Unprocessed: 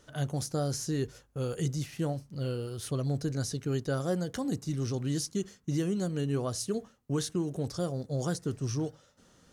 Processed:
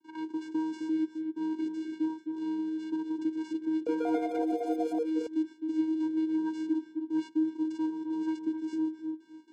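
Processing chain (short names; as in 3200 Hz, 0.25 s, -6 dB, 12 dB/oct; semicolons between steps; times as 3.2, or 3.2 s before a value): CVSD 32 kbps; gate with hold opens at -51 dBFS; vocoder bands 8, square 316 Hz; darkening echo 0.26 s, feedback 18%, low-pass 1300 Hz, level -7 dB; 3.68–5.78 echoes that change speed 0.185 s, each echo +7 st, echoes 2; three-band squash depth 40%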